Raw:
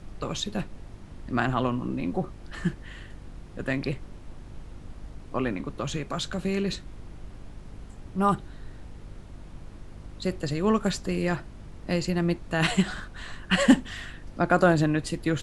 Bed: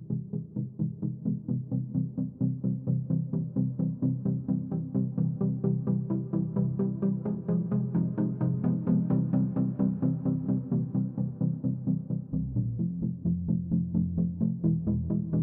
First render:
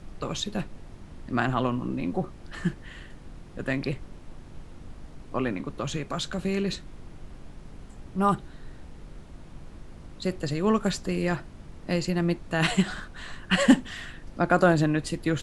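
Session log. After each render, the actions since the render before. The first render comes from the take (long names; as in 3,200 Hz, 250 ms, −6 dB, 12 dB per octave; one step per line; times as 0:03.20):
hum removal 50 Hz, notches 2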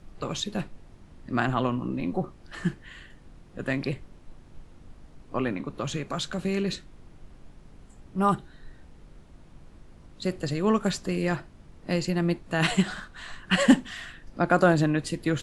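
noise reduction from a noise print 6 dB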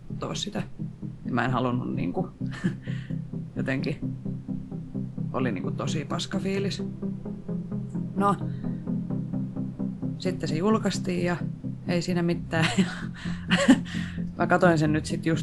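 mix in bed −4 dB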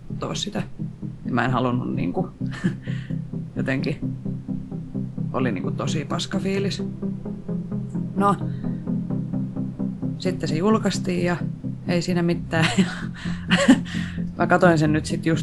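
level +4 dB
brickwall limiter −2 dBFS, peak gain reduction 1 dB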